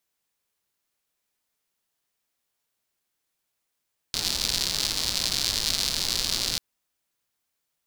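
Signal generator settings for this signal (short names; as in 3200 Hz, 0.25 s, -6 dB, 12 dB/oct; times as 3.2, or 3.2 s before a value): rain from filtered ticks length 2.44 s, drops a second 170, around 4400 Hz, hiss -9 dB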